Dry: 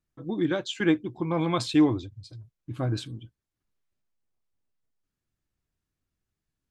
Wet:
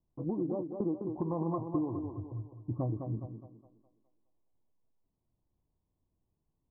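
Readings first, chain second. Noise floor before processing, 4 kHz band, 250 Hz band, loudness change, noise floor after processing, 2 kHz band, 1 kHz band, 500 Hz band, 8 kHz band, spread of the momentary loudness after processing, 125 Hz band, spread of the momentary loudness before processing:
below −85 dBFS, below −40 dB, −8.5 dB, −9.0 dB, −83 dBFS, below −40 dB, −7.5 dB, −6.5 dB, below −35 dB, 9 LU, −4.5 dB, 21 LU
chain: Butterworth low-pass 1,100 Hz 96 dB per octave
downward compressor 10 to 1, threshold −34 dBFS, peak gain reduction 18.5 dB
feedback echo with a high-pass in the loop 207 ms, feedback 45%, high-pass 200 Hz, level −5 dB
level +3.5 dB

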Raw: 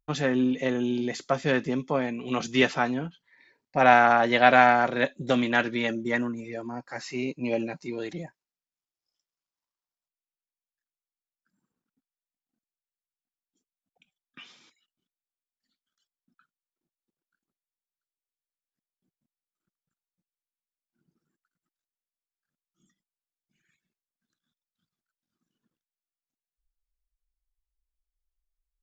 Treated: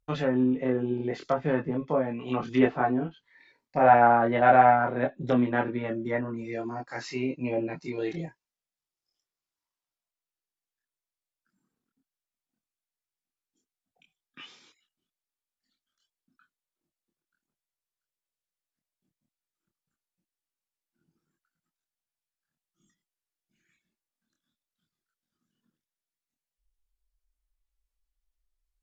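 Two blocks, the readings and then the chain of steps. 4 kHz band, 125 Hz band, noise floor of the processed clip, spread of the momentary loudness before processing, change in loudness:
−11.5 dB, +1.5 dB, below −85 dBFS, 17 LU, −1.0 dB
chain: treble cut that deepens with the level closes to 1,200 Hz, closed at −23.5 dBFS
multi-voice chorus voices 4, 0.13 Hz, delay 25 ms, depth 1.8 ms
level +3.5 dB

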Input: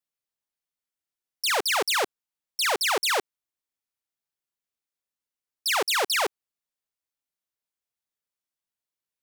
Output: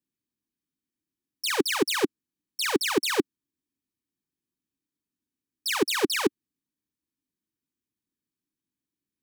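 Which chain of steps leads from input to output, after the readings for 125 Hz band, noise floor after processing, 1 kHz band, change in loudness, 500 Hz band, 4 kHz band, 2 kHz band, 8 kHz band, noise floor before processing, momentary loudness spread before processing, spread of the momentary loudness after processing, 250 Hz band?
can't be measured, below −85 dBFS, −5.5 dB, −2.0 dB, +2.0 dB, −3.0 dB, −3.5 dB, −2.5 dB, below −85 dBFS, 8 LU, 8 LU, +14.0 dB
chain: low shelf with overshoot 420 Hz +12.5 dB, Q 3
notch comb filter 690 Hz
level −1.5 dB

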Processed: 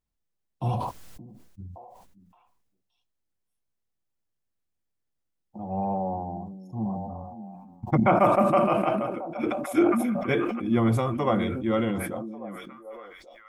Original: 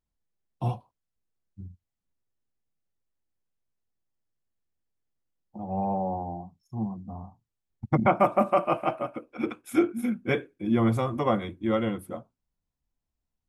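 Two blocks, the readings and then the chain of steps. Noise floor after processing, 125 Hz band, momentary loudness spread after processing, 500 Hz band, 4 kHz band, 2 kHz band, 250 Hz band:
−80 dBFS, +2.0 dB, 21 LU, +2.5 dB, +2.0 dB, +2.0 dB, +2.5 dB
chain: echo through a band-pass that steps 571 ms, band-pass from 240 Hz, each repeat 1.4 octaves, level −11 dB
level that may fall only so fast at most 37 dB per second

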